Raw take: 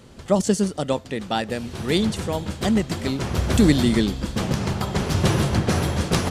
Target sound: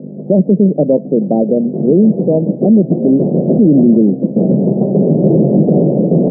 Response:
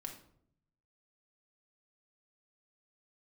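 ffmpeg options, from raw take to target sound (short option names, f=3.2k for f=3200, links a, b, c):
-filter_complex "[0:a]aeval=exprs='val(0)+0.0158*(sin(2*PI*50*n/s)+sin(2*PI*2*50*n/s)/2+sin(2*PI*3*50*n/s)/3+sin(2*PI*4*50*n/s)/4+sin(2*PI*5*50*n/s)/5)':c=same,asettb=1/sr,asplit=3[a][b][c];[a]atrim=end=3.974[d];[b]atrim=start=3.97:end=4.71,asetpts=PTS-STARTPTS,afade=t=in:d=0.004:c=qsin,afade=t=out:st=0.736:d=0.004:c=qsin,aeval=exprs='0.422*(cos(1*acos(clip(val(0)/0.422,-1,1)))-cos(1*PI/2))+0.0119*(cos(7*acos(clip(val(0)/0.422,-1,1)))-cos(7*PI/2))':c=same[e];[c]atrim=start=4.706[f];[d][e]acrossfade=d=0.004:c1=hsin:c2=qsin[g];[g][f]acrossfade=d=0.004:c1=qsin:c2=hsin,asuperpass=centerf=310:order=12:qfactor=0.65,alimiter=level_in=18.5dB:limit=-1dB:release=50:level=0:latency=1,volume=-1dB"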